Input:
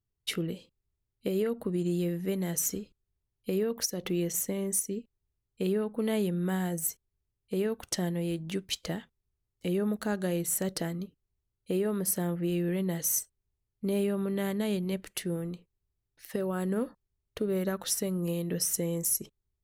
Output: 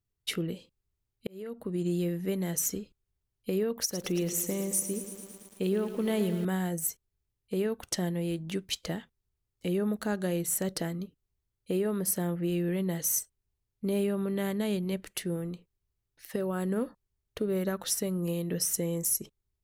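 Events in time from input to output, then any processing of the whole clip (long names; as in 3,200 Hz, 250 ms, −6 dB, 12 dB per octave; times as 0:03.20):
0:01.27–0:01.86: fade in linear
0:03.79–0:06.45: feedback echo at a low word length 111 ms, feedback 80%, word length 8 bits, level −11 dB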